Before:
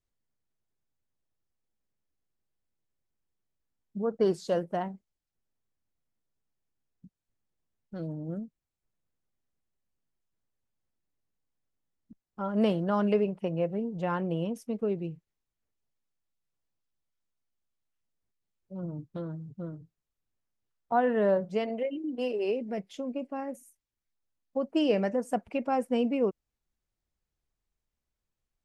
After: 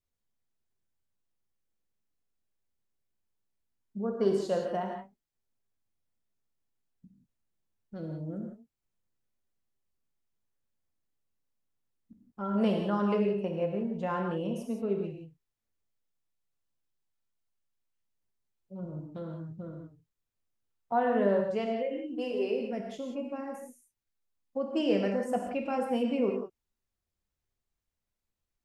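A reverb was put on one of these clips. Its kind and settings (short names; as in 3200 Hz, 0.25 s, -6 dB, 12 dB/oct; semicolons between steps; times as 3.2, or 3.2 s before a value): non-linear reverb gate 0.2 s flat, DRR 1 dB; gain -3.5 dB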